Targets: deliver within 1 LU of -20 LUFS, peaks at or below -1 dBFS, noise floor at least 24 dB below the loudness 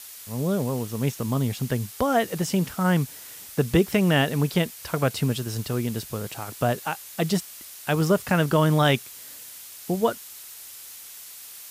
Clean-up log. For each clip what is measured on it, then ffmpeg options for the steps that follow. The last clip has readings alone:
noise floor -43 dBFS; noise floor target -49 dBFS; loudness -25.0 LUFS; peak level -9.0 dBFS; loudness target -20.0 LUFS
-> -af "afftdn=nr=6:nf=-43"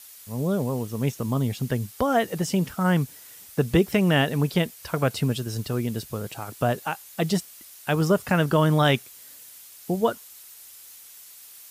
noise floor -47 dBFS; noise floor target -49 dBFS
-> -af "afftdn=nr=6:nf=-47"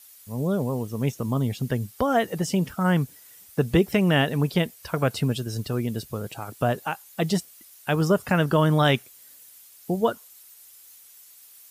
noise floor -51 dBFS; loudness -25.0 LUFS; peak level -9.0 dBFS; loudness target -20.0 LUFS
-> -af "volume=1.78"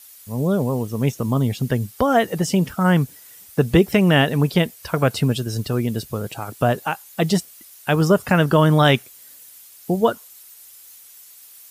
loudness -20.0 LUFS; peak level -4.0 dBFS; noise floor -46 dBFS

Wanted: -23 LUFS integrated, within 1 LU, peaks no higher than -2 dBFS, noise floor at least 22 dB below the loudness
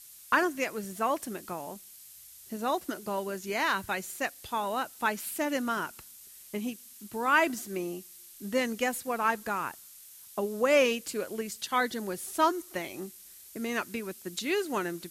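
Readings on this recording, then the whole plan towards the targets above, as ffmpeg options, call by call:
noise floor -51 dBFS; noise floor target -53 dBFS; loudness -31.0 LUFS; peak level -11.5 dBFS; loudness target -23.0 LUFS
-> -af "afftdn=nr=6:nf=-51"
-af "volume=2.51"

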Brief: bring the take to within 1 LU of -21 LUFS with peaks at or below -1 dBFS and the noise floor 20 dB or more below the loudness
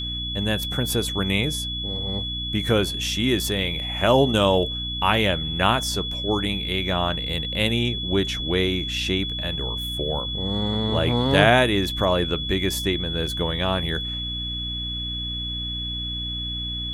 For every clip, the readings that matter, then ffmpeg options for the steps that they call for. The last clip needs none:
hum 60 Hz; highest harmonic 300 Hz; hum level -30 dBFS; steady tone 3.4 kHz; tone level -28 dBFS; loudness -23.0 LUFS; peak level -2.0 dBFS; loudness target -21.0 LUFS
-> -af "bandreject=f=60:t=h:w=4,bandreject=f=120:t=h:w=4,bandreject=f=180:t=h:w=4,bandreject=f=240:t=h:w=4,bandreject=f=300:t=h:w=4"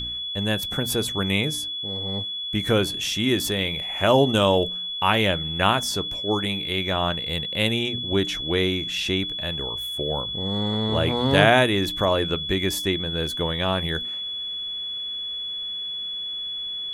hum not found; steady tone 3.4 kHz; tone level -28 dBFS
-> -af "bandreject=f=3400:w=30"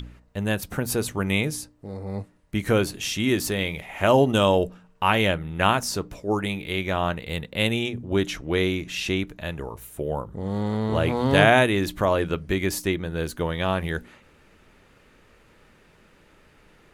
steady tone not found; loudness -24.5 LUFS; peak level -2.5 dBFS; loudness target -21.0 LUFS
-> -af "volume=1.5,alimiter=limit=0.891:level=0:latency=1"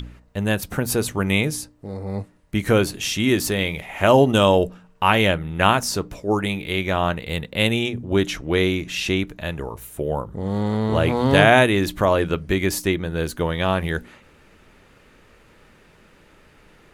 loudness -21.0 LUFS; peak level -1.0 dBFS; noise floor -53 dBFS

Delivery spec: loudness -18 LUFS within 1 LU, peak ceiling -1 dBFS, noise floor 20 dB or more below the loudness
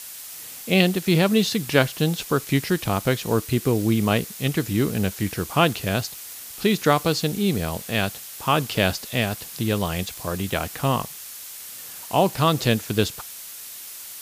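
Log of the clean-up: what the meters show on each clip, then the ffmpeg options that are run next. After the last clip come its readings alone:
noise floor -39 dBFS; noise floor target -43 dBFS; loudness -23.0 LUFS; peak level -3.0 dBFS; loudness target -18.0 LUFS
-> -af "afftdn=nr=6:nf=-39"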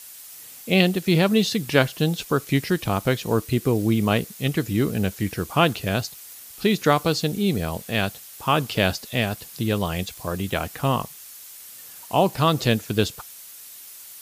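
noise floor -43 dBFS; loudness -23.0 LUFS; peak level -3.0 dBFS; loudness target -18.0 LUFS
-> -af "volume=1.78,alimiter=limit=0.891:level=0:latency=1"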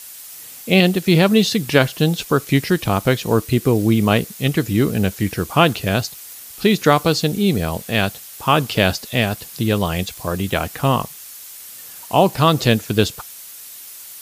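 loudness -18.0 LUFS; peak level -1.0 dBFS; noise floor -38 dBFS

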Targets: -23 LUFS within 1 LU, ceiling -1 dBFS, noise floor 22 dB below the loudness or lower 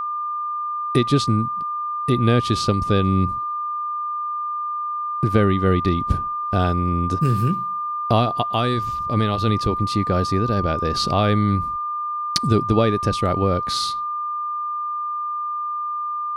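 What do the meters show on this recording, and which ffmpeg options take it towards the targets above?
steady tone 1.2 kHz; tone level -23 dBFS; loudness -21.5 LUFS; peak level -1.5 dBFS; loudness target -23.0 LUFS
-> -af "bandreject=f=1200:w=30"
-af "volume=0.841"

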